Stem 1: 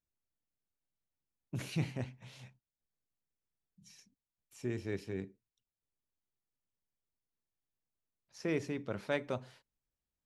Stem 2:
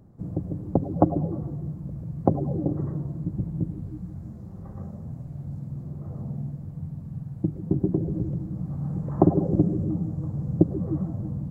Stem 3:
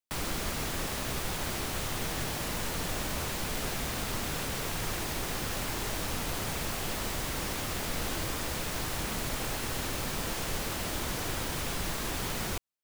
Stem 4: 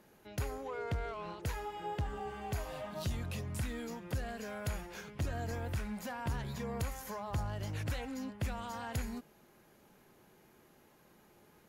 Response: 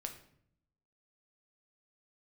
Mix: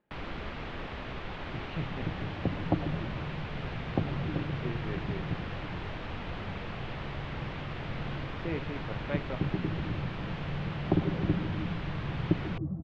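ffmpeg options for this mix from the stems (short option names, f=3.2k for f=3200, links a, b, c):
-filter_complex "[0:a]volume=-2dB[a];[1:a]lowshelf=f=210:g=8,adelay=1700,volume=-12dB[b];[2:a]volume=-4dB[c];[3:a]volume=-14.5dB[d];[a][b][c][d]amix=inputs=4:normalize=0,lowpass=f=3.2k:w=0.5412,lowpass=f=3.2k:w=1.3066"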